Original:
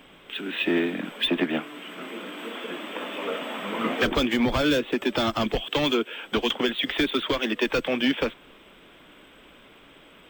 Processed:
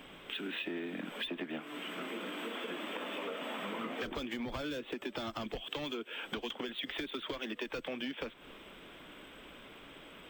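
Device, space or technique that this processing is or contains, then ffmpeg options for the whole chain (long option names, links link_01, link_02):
serial compression, peaks first: -af "acompressor=threshold=-32dB:ratio=4,acompressor=threshold=-38dB:ratio=2,volume=-1dB"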